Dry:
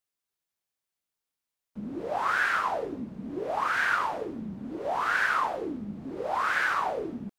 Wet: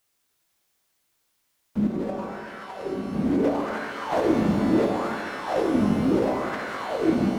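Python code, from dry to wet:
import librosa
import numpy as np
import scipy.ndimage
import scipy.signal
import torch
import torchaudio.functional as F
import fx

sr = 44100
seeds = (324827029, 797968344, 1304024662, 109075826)

y = fx.over_compress(x, sr, threshold_db=-35.0, ratio=-0.5)
y = fx.comb_fb(y, sr, f0_hz=190.0, decay_s=0.16, harmonics='all', damping=0.0, mix_pct=80, at=(1.87, 3.13))
y = fx.rev_shimmer(y, sr, seeds[0], rt60_s=2.0, semitones=12, shimmer_db=-8, drr_db=2.0)
y = F.gain(torch.from_numpy(y), 8.5).numpy()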